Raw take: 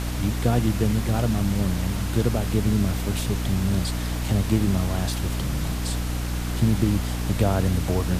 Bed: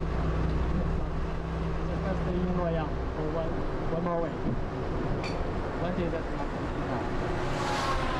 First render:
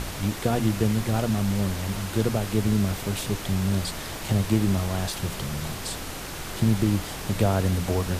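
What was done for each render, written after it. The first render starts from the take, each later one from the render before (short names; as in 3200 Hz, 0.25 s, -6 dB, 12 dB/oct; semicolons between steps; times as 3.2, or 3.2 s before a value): notches 60/120/180/240/300 Hz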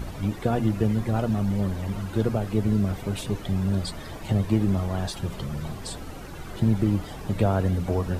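denoiser 13 dB, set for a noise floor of -35 dBFS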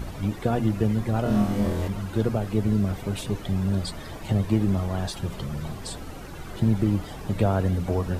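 1.23–1.88 flutter echo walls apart 4.1 m, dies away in 0.73 s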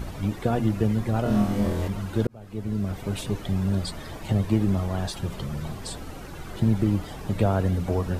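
2.27–3.13 fade in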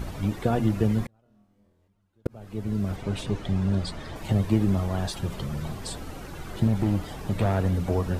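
1.04–2.26 flipped gate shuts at -26 dBFS, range -40 dB; 2.96–4.16 air absorption 50 m; 6.67–7.87 hard clip -18 dBFS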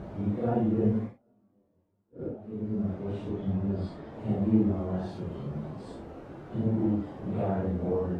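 phase scrambler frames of 0.2 s; band-pass 340 Hz, Q 0.72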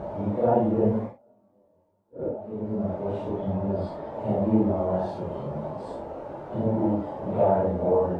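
small resonant body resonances 610/860 Hz, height 15 dB, ringing for 20 ms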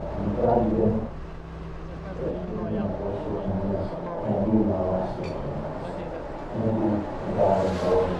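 add bed -5.5 dB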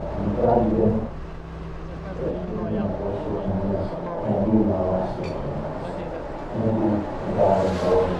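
gain +2.5 dB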